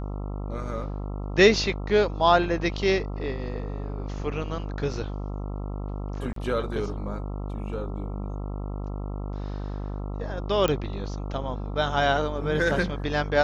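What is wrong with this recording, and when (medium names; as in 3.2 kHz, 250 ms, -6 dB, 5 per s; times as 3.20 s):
buzz 50 Hz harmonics 27 -32 dBFS
6.33–6.36 s: dropout 33 ms
10.68 s: pop -11 dBFS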